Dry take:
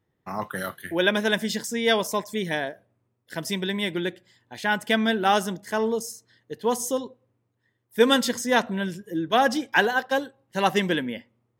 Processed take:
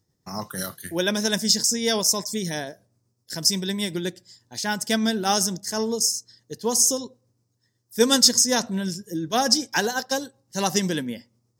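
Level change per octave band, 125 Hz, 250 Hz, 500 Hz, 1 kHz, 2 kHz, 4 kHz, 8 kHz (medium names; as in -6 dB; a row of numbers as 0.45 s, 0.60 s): +2.0 dB, +1.0 dB, -2.0 dB, -3.5 dB, -5.0 dB, +5.5 dB, +14.0 dB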